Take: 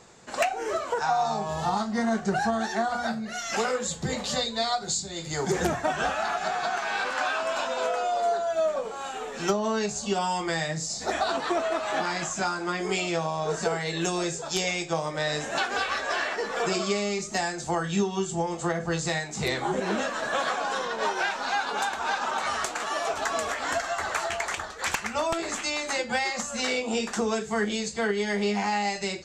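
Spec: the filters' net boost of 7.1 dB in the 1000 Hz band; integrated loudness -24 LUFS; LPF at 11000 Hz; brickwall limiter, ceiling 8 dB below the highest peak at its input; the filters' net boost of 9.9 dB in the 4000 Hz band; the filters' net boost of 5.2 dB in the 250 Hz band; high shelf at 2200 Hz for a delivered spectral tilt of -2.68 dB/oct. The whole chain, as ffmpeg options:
-af "lowpass=11k,equalizer=f=250:t=o:g=6.5,equalizer=f=1k:t=o:g=8,highshelf=f=2.2k:g=4.5,equalizer=f=4k:t=o:g=7.5,volume=-0.5dB,alimiter=limit=-14dB:level=0:latency=1"

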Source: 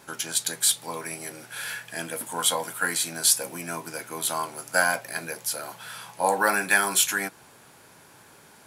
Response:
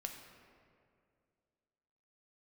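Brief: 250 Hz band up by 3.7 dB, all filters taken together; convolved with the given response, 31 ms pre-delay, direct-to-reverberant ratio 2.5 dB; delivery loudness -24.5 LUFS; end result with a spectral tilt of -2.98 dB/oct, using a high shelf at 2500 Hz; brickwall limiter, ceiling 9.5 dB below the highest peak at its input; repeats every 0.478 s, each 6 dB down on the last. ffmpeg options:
-filter_complex "[0:a]equalizer=f=250:t=o:g=5,highshelf=f=2.5k:g=-3.5,alimiter=limit=-17dB:level=0:latency=1,aecho=1:1:478|956|1434|1912|2390|2868:0.501|0.251|0.125|0.0626|0.0313|0.0157,asplit=2[a][b];[1:a]atrim=start_sample=2205,adelay=31[c];[b][c]afir=irnorm=-1:irlink=0,volume=-0.5dB[d];[a][d]amix=inputs=2:normalize=0,volume=3.5dB"

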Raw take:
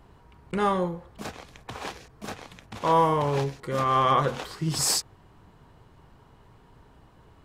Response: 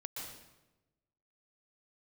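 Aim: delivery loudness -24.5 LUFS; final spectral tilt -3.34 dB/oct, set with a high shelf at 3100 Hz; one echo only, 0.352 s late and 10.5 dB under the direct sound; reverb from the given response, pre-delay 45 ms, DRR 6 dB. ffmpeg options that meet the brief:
-filter_complex "[0:a]highshelf=f=3.1k:g=5.5,aecho=1:1:352:0.299,asplit=2[a][b];[1:a]atrim=start_sample=2205,adelay=45[c];[b][c]afir=irnorm=-1:irlink=0,volume=-5dB[d];[a][d]amix=inputs=2:normalize=0,volume=-1.5dB"

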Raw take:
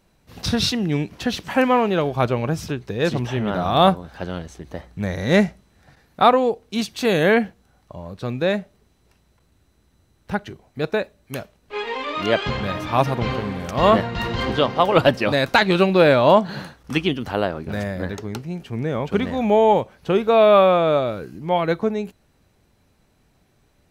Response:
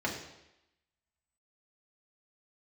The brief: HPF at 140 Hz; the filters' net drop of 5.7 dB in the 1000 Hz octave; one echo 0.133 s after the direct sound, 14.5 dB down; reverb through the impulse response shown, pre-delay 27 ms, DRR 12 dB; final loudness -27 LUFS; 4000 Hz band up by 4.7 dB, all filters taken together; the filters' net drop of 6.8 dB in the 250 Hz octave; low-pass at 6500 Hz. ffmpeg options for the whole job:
-filter_complex "[0:a]highpass=140,lowpass=6.5k,equalizer=f=250:t=o:g=-8,equalizer=f=1k:t=o:g=-7.5,equalizer=f=4k:t=o:g=6.5,aecho=1:1:133:0.188,asplit=2[a][b];[1:a]atrim=start_sample=2205,adelay=27[c];[b][c]afir=irnorm=-1:irlink=0,volume=-19.5dB[d];[a][d]amix=inputs=2:normalize=0,volume=-4.5dB"

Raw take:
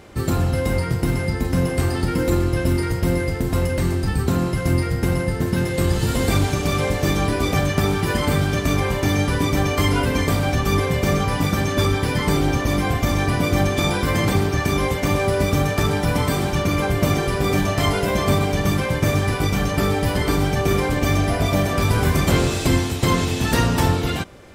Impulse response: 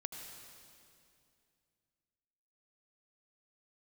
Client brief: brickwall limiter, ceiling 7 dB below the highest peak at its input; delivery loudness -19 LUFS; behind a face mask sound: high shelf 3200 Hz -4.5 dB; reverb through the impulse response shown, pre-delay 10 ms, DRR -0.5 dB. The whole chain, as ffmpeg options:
-filter_complex "[0:a]alimiter=limit=-11dB:level=0:latency=1,asplit=2[a][b];[1:a]atrim=start_sample=2205,adelay=10[c];[b][c]afir=irnorm=-1:irlink=0,volume=2dB[d];[a][d]amix=inputs=2:normalize=0,highshelf=f=3.2k:g=-4.5,volume=-1dB"

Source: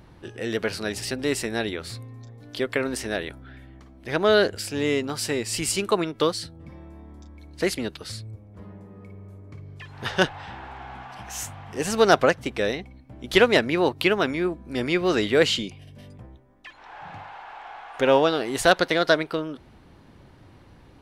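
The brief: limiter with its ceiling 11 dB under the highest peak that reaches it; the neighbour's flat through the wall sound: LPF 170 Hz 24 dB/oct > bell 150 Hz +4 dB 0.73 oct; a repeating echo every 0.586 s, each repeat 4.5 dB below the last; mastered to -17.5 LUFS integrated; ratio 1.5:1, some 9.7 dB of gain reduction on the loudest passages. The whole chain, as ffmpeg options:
-af "acompressor=threshold=-40dB:ratio=1.5,alimiter=limit=-23.5dB:level=0:latency=1,lowpass=f=170:w=0.5412,lowpass=f=170:w=1.3066,equalizer=f=150:t=o:w=0.73:g=4,aecho=1:1:586|1172|1758|2344|2930|3516|4102|4688|5274:0.596|0.357|0.214|0.129|0.0772|0.0463|0.0278|0.0167|0.01,volume=27.5dB"

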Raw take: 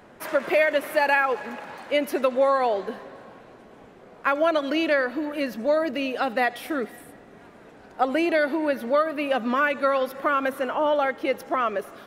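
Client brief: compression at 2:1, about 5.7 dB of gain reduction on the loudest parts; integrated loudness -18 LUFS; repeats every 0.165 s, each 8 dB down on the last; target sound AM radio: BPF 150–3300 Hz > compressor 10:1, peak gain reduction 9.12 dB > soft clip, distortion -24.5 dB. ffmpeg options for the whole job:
-af "acompressor=threshold=-27dB:ratio=2,highpass=150,lowpass=3.3k,aecho=1:1:165|330|495|660|825:0.398|0.159|0.0637|0.0255|0.0102,acompressor=threshold=-29dB:ratio=10,asoftclip=threshold=-22dB,volume=16.5dB"

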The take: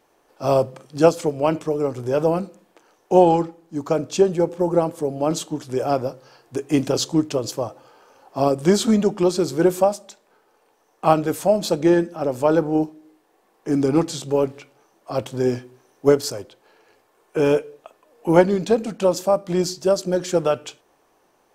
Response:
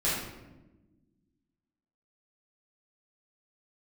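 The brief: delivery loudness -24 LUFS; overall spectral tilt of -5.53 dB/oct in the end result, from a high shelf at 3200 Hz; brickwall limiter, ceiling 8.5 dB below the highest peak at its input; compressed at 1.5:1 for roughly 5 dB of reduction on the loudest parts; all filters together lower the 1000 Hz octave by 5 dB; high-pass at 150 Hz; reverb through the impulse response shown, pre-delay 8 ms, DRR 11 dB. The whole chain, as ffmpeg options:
-filter_complex "[0:a]highpass=150,equalizer=f=1k:t=o:g=-7,highshelf=f=3.2k:g=-3.5,acompressor=threshold=-24dB:ratio=1.5,alimiter=limit=-16.5dB:level=0:latency=1,asplit=2[a][b];[1:a]atrim=start_sample=2205,adelay=8[c];[b][c]afir=irnorm=-1:irlink=0,volume=-21dB[d];[a][d]amix=inputs=2:normalize=0,volume=4dB"

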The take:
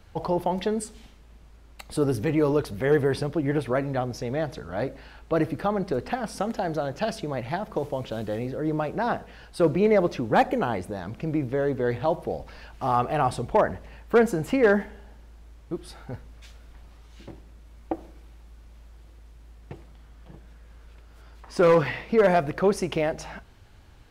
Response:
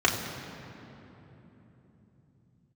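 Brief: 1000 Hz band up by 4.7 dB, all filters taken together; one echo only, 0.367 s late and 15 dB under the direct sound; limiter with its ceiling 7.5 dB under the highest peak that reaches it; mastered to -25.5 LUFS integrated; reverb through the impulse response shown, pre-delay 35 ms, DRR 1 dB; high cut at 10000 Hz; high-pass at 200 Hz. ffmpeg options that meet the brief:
-filter_complex "[0:a]highpass=200,lowpass=10k,equalizer=f=1k:t=o:g=6.5,alimiter=limit=-12.5dB:level=0:latency=1,aecho=1:1:367:0.178,asplit=2[a][b];[1:a]atrim=start_sample=2205,adelay=35[c];[b][c]afir=irnorm=-1:irlink=0,volume=-16.5dB[d];[a][d]amix=inputs=2:normalize=0,volume=-1.5dB"

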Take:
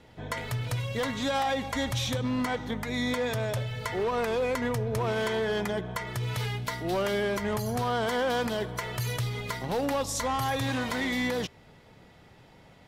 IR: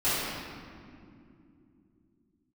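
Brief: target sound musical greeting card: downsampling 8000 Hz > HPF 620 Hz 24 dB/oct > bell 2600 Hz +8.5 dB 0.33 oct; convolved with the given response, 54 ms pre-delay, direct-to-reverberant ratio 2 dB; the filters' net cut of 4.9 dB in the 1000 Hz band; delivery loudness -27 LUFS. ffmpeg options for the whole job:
-filter_complex "[0:a]equalizer=f=1k:t=o:g=-6,asplit=2[a][b];[1:a]atrim=start_sample=2205,adelay=54[c];[b][c]afir=irnorm=-1:irlink=0,volume=-15.5dB[d];[a][d]amix=inputs=2:normalize=0,aresample=8000,aresample=44100,highpass=f=620:w=0.5412,highpass=f=620:w=1.3066,equalizer=f=2.6k:t=o:w=0.33:g=8.5,volume=5.5dB"

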